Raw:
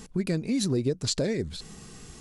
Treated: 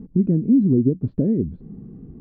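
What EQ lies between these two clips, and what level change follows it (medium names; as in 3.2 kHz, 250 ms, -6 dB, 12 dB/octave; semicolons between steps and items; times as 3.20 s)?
band-pass filter 260 Hz, Q 1.8; distance through air 340 m; tilt EQ -4.5 dB/octave; +4.0 dB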